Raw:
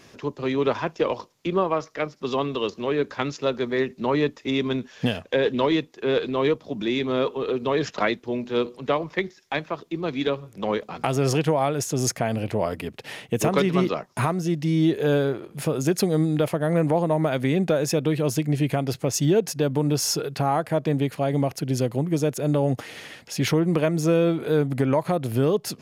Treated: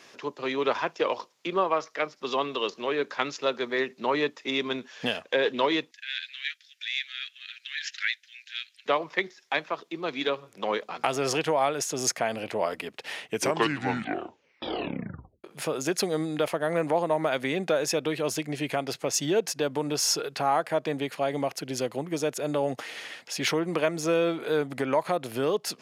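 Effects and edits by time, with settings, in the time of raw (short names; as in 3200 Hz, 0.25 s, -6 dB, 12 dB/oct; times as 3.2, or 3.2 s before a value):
5.91–8.86 steep high-pass 1600 Hz 72 dB/oct
13.2 tape stop 2.24 s
whole clip: weighting filter A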